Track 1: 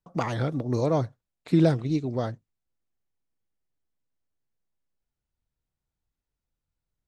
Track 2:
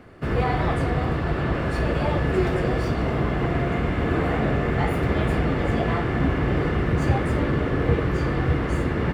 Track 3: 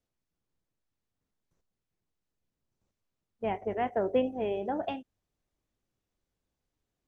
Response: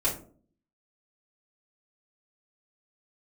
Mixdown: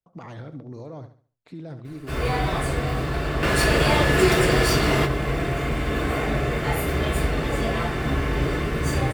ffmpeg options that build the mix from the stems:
-filter_complex "[0:a]highshelf=frequency=5200:gain=-9,alimiter=limit=-21.5dB:level=0:latency=1:release=51,volume=-8dB,asplit=2[link_01][link_02];[link_02]volume=-11dB[link_03];[1:a]crystalizer=i=7.5:c=0,adelay=1850,volume=0dB,asplit=2[link_04][link_05];[link_05]volume=-14dB[link_06];[2:a]volume=-12dB,asplit=2[link_07][link_08];[link_08]apad=whole_len=484317[link_09];[link_04][link_09]sidechaingate=range=-33dB:threshold=-57dB:ratio=16:detection=peak[link_10];[3:a]atrim=start_sample=2205[link_11];[link_06][link_11]afir=irnorm=-1:irlink=0[link_12];[link_03]aecho=0:1:70|140|210|280|350:1|0.32|0.102|0.0328|0.0105[link_13];[link_01][link_10][link_07][link_12][link_13]amix=inputs=5:normalize=0"

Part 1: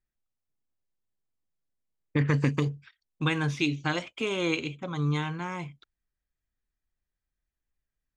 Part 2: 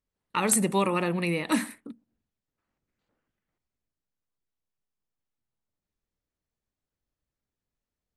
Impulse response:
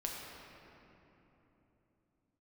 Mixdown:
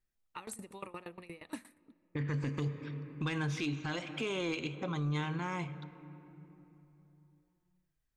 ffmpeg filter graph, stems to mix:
-filter_complex "[0:a]volume=-0.5dB,asplit=2[link_01][link_02];[link_02]volume=-15dB[link_03];[1:a]lowshelf=frequency=120:width_type=q:width=3:gain=7.5,aeval=exprs='val(0)*pow(10,-21*if(lt(mod(8.5*n/s,1),2*abs(8.5)/1000),1-mod(8.5*n/s,1)/(2*abs(8.5)/1000),(mod(8.5*n/s,1)-2*abs(8.5)/1000)/(1-2*abs(8.5)/1000))/20)':channel_layout=same,volume=-13dB,asplit=3[link_04][link_05][link_06];[link_05]volume=-22.5dB[link_07];[link_06]apad=whole_len=360093[link_08];[link_01][link_08]sidechaincompress=threshold=-58dB:ratio=8:attack=25:release=776[link_09];[2:a]atrim=start_sample=2205[link_10];[link_03][link_07]amix=inputs=2:normalize=0[link_11];[link_11][link_10]afir=irnorm=-1:irlink=0[link_12];[link_09][link_04][link_12]amix=inputs=3:normalize=0,asoftclip=type=tanh:threshold=-17dB,alimiter=level_in=3dB:limit=-24dB:level=0:latency=1:release=154,volume=-3dB"

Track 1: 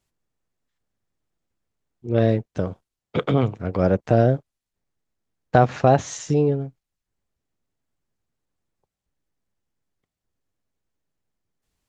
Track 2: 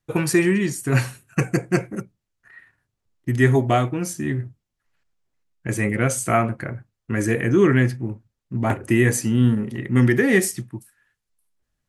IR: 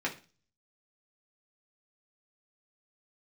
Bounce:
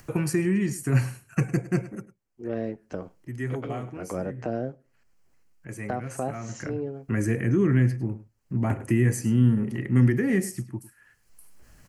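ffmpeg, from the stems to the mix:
-filter_complex "[0:a]equalizer=frequency=110:width=1.4:gain=-15,adelay=350,volume=-4.5dB,asplit=2[link_01][link_02];[link_02]volume=-21.5dB[link_03];[1:a]acompressor=mode=upward:threshold=-30dB:ratio=2.5,volume=11dB,afade=type=out:start_time=1.77:duration=0.32:silence=0.251189,afade=type=in:start_time=6.43:duration=0.48:silence=0.237137,asplit=3[link_04][link_05][link_06];[link_05]volume=-18.5dB[link_07];[link_06]apad=whole_len=539609[link_08];[link_01][link_08]sidechaincompress=threshold=-35dB:ratio=8:attack=16:release=346[link_09];[2:a]atrim=start_sample=2205[link_10];[link_03][link_10]afir=irnorm=-1:irlink=0[link_11];[link_07]aecho=0:1:103:1[link_12];[link_09][link_04][link_11][link_12]amix=inputs=4:normalize=0,acrossover=split=260[link_13][link_14];[link_14]acompressor=threshold=-33dB:ratio=2.5[link_15];[link_13][link_15]amix=inputs=2:normalize=0,equalizer=frequency=3600:width=6.5:gain=-14"

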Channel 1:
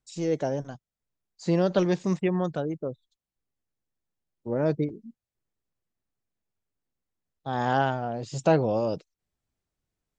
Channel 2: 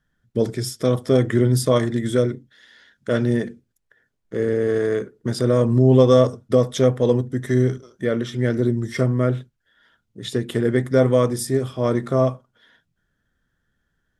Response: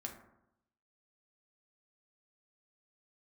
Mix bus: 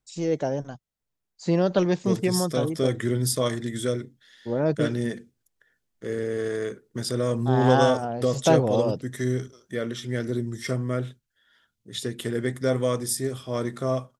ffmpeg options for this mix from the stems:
-filter_complex "[0:a]volume=1.5dB[link_01];[1:a]highshelf=frequency=2600:gain=10.5,adelay=1700,volume=-8dB[link_02];[link_01][link_02]amix=inputs=2:normalize=0"

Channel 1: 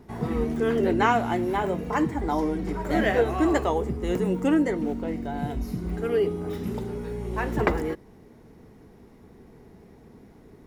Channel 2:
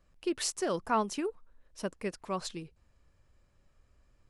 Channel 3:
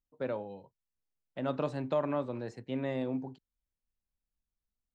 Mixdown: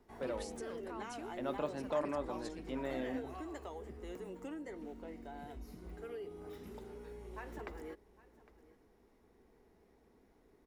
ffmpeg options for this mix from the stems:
ffmpeg -i stem1.wav -i stem2.wav -i stem3.wav -filter_complex "[0:a]acrossover=split=330|3000[link_01][link_02][link_03];[link_02]acompressor=threshold=-25dB:ratio=6[link_04];[link_01][link_04][link_03]amix=inputs=3:normalize=0,equalizer=frequency=180:width=1.3:gain=-5.5,acompressor=threshold=-28dB:ratio=4,volume=-13.5dB,asplit=2[link_05][link_06];[link_06]volume=-20dB[link_07];[1:a]alimiter=level_in=3dB:limit=-24dB:level=0:latency=1:release=96,volume=-3dB,volume=-12dB[link_08];[2:a]volume=-4.5dB[link_09];[link_07]aecho=0:1:808:1[link_10];[link_05][link_08][link_09][link_10]amix=inputs=4:normalize=0,equalizer=frequency=120:width=1.3:gain=-9.5" out.wav

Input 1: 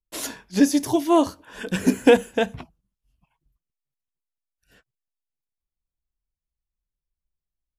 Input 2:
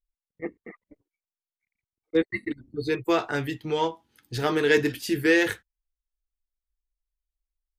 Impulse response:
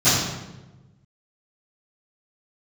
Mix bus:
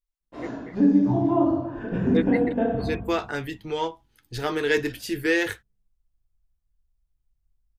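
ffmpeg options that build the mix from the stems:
-filter_complex "[0:a]lowpass=1100,acompressor=threshold=-22dB:ratio=5,adelay=200,volume=-3dB,asplit=3[link_01][link_02][link_03];[link_02]volume=-16.5dB[link_04];[link_03]volume=-12.5dB[link_05];[1:a]volume=-1.5dB[link_06];[2:a]atrim=start_sample=2205[link_07];[link_04][link_07]afir=irnorm=-1:irlink=0[link_08];[link_05]aecho=0:1:315:1[link_09];[link_01][link_06][link_08][link_09]amix=inputs=4:normalize=0,asubboost=boost=5.5:cutoff=64"

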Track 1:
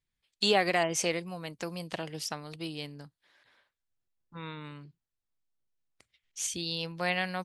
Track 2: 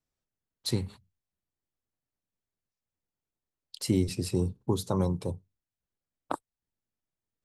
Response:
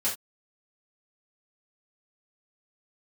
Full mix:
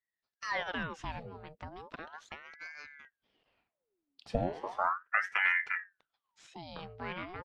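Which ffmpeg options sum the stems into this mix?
-filter_complex "[0:a]asoftclip=type=tanh:threshold=-16.5dB,volume=-5dB,asplit=2[link_01][link_02];[1:a]dynaudnorm=framelen=230:gausssize=11:maxgain=9dB,adelay=450,volume=-8.5dB,asplit=2[link_03][link_04];[link_04]volume=-22dB[link_05];[link_02]apad=whole_len=348024[link_06];[link_03][link_06]sidechaincompress=threshold=-49dB:ratio=8:attack=10:release=295[link_07];[2:a]atrim=start_sample=2205[link_08];[link_05][link_08]afir=irnorm=-1:irlink=0[link_09];[link_01][link_07][link_09]amix=inputs=3:normalize=0,lowpass=2200,aeval=exprs='val(0)*sin(2*PI*1100*n/s+1100*0.75/0.36*sin(2*PI*0.36*n/s))':channel_layout=same"

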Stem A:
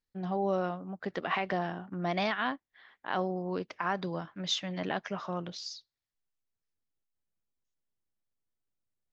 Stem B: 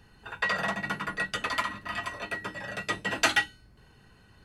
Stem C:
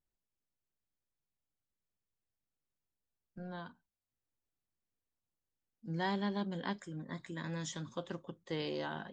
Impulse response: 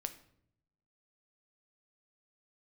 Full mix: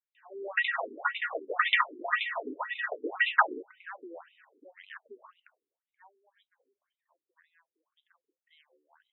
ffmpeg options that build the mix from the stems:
-filter_complex "[0:a]volume=-5.5dB[link_01];[1:a]dynaudnorm=framelen=360:gausssize=5:maxgain=8dB,asubboost=boost=9:cutoff=66,adelay=150,volume=1.5dB[link_02];[2:a]highpass=900,volume=-14.5dB[link_03];[link_01][link_02][link_03]amix=inputs=3:normalize=0,afftfilt=real='re*between(b*sr/1024,320*pow(2900/320,0.5+0.5*sin(2*PI*1.9*pts/sr))/1.41,320*pow(2900/320,0.5+0.5*sin(2*PI*1.9*pts/sr))*1.41)':imag='im*between(b*sr/1024,320*pow(2900/320,0.5+0.5*sin(2*PI*1.9*pts/sr))/1.41,320*pow(2900/320,0.5+0.5*sin(2*PI*1.9*pts/sr))*1.41)':win_size=1024:overlap=0.75"

